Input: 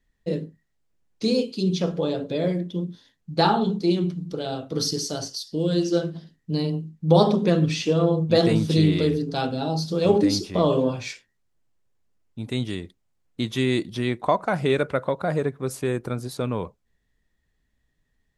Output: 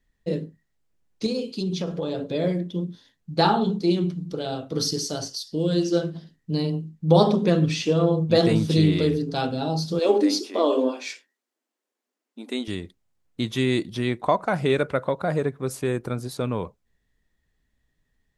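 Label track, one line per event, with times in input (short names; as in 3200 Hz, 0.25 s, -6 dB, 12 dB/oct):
1.260000	2.340000	compressor 4:1, threshold -23 dBFS
9.990000	12.680000	brick-wall FIR high-pass 220 Hz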